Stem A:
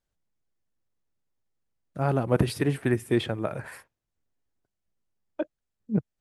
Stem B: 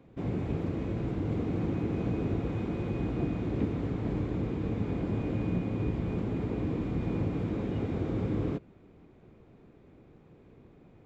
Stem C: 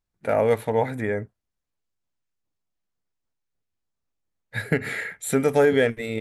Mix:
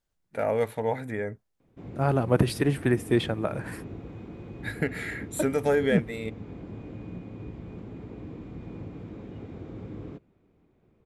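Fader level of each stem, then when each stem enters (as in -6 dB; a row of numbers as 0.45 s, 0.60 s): +1.0 dB, -9.0 dB, -5.5 dB; 0.00 s, 1.60 s, 0.10 s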